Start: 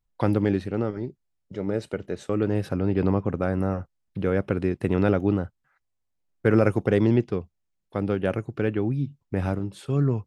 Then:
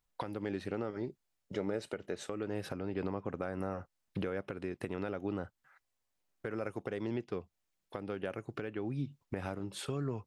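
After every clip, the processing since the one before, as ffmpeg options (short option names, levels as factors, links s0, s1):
-af "lowshelf=f=270:g=-11.5,acompressor=threshold=0.0158:ratio=4,alimiter=level_in=1.58:limit=0.0631:level=0:latency=1:release=413,volume=0.631,volume=1.58"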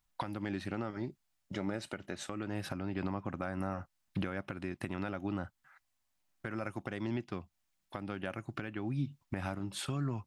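-af "equalizer=f=450:t=o:w=0.41:g=-15,volume=1.41"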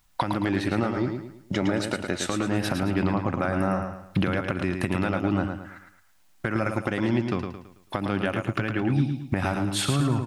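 -filter_complex "[0:a]asplit=2[s0][s1];[s1]acompressor=threshold=0.00708:ratio=6,volume=1.06[s2];[s0][s2]amix=inputs=2:normalize=0,aecho=1:1:110|220|330|440|550:0.501|0.19|0.0724|0.0275|0.0105,volume=2.82"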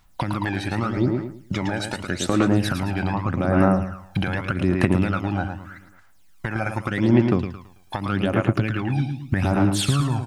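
-af "aphaser=in_gain=1:out_gain=1:delay=1.3:decay=0.62:speed=0.83:type=sinusoidal"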